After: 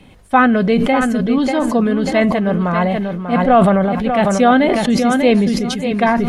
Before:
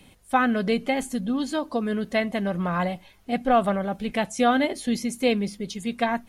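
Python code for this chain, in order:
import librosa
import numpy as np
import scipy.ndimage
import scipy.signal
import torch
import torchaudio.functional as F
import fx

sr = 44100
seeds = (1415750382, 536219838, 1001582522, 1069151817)

p1 = fx.lowpass(x, sr, hz=2100.0, slope=6)
p2 = p1 + fx.echo_feedback(p1, sr, ms=592, feedback_pct=18, wet_db=-8.0, dry=0)
p3 = fx.sustainer(p2, sr, db_per_s=25.0)
y = p3 * librosa.db_to_amplitude(8.5)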